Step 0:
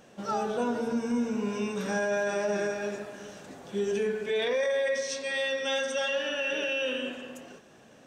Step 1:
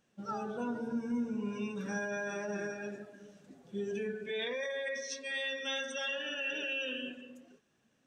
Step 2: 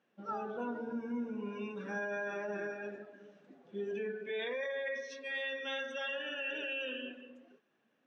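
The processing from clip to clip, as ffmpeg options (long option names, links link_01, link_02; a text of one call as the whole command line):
ffmpeg -i in.wav -af "afftdn=noise_reduction=13:noise_floor=-38,equalizer=frequency=610:width=0.91:gain=-8,volume=-3.5dB" out.wav
ffmpeg -i in.wav -af "highpass=260,lowpass=2800" out.wav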